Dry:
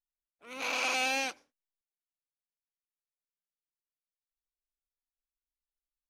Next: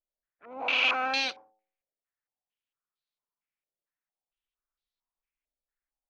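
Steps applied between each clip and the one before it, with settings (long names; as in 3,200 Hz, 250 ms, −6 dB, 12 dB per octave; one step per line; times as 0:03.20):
hum removal 108.4 Hz, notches 8
low-pass on a step sequencer 4.4 Hz 590–4,000 Hz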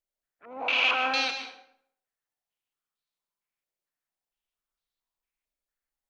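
convolution reverb RT60 0.65 s, pre-delay 117 ms, DRR 6.5 dB
level +1 dB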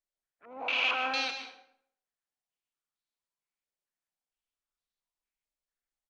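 downsampling to 22,050 Hz
level −4.5 dB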